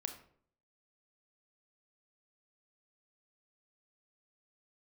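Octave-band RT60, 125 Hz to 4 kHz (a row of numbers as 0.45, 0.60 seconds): 0.70, 0.65, 0.65, 0.55, 0.45, 0.35 seconds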